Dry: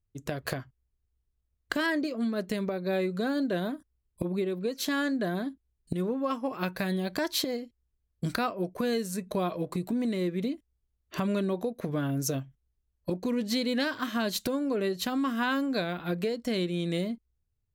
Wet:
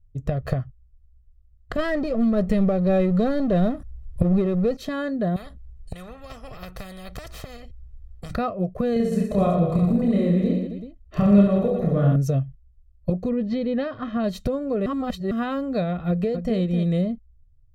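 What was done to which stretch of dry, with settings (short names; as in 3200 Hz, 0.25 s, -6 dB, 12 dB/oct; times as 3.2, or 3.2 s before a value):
1.78–4.77 power-law curve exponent 0.7
5.36–8.31 spectral compressor 4:1
8.93–12.16 reverse bouncing-ball echo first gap 30 ms, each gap 1.3×, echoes 6, each echo -2 dB
13.29–14.24 air absorption 190 m
14.86–15.31 reverse
16.08–16.57 echo throw 0.26 s, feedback 10%, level -9 dB
whole clip: tilt -4 dB/oct; comb 1.6 ms, depth 63%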